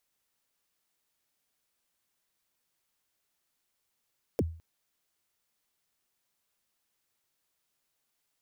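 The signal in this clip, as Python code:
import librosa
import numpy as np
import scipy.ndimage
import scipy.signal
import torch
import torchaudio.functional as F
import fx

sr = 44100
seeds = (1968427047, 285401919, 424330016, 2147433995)

y = fx.drum_kick(sr, seeds[0], length_s=0.21, level_db=-21.0, start_hz=580.0, end_hz=82.0, sweep_ms=38.0, decay_s=0.42, click=True)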